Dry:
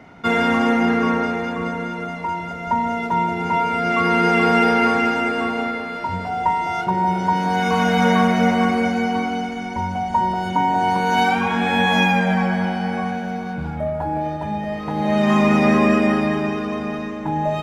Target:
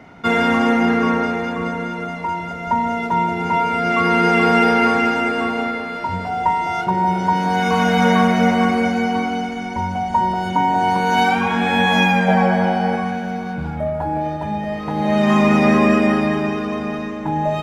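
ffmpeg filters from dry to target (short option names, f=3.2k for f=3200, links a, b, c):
-filter_complex "[0:a]asettb=1/sr,asplit=3[a][b][c];[a]atrim=end=12.284[d];[b]atrim=start=12.28:end=12.96,asetpts=PTS-STARTPTS,afade=t=in:d=0.004:c=qsin,afade=t=out:st=0.676:d=0.004:c=qsin,equalizer=f=580:t=o:w=1.3:g=8[e];[c]atrim=start=12.956[f];[d][e]acrossfade=d=0.004:c1=hsin:c2=qsin[g];[g][f]acrossfade=d=0.004:c1=qsin:c2=hsin,volume=1.5dB"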